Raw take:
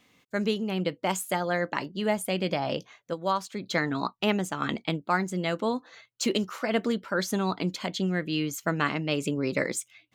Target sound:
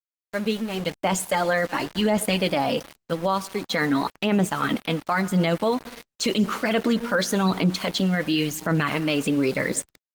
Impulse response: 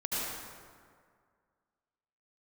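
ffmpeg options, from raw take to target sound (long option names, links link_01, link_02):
-filter_complex "[0:a]highshelf=frequency=8700:gain=-10,asplit=2[link_01][link_02];[1:a]atrim=start_sample=2205[link_03];[link_02][link_03]afir=irnorm=-1:irlink=0,volume=-26.5dB[link_04];[link_01][link_04]amix=inputs=2:normalize=0,aphaser=in_gain=1:out_gain=1:delay=4.2:decay=0.44:speed=0.92:type=sinusoidal,highshelf=frequency=3000:gain=5,bandreject=frequency=360:width=12,dynaudnorm=framelen=720:gausssize=3:maxgain=8dB,aeval=exprs='val(0)*gte(abs(val(0)),0.0224)':channel_layout=same,alimiter=limit=-13dB:level=0:latency=1:release=14" -ar 48000 -c:a libopus -b:a 32k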